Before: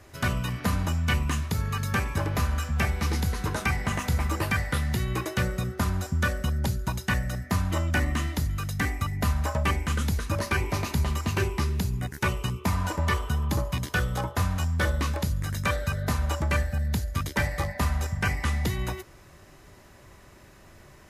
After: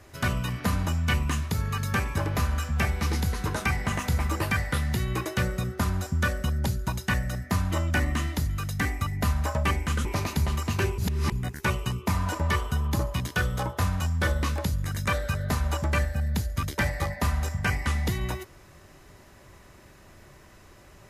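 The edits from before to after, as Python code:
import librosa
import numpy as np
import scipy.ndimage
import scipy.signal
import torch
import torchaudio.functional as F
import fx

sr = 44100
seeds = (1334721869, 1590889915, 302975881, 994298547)

y = fx.edit(x, sr, fx.cut(start_s=10.05, length_s=0.58),
    fx.reverse_span(start_s=11.56, length_s=0.34), tone=tone)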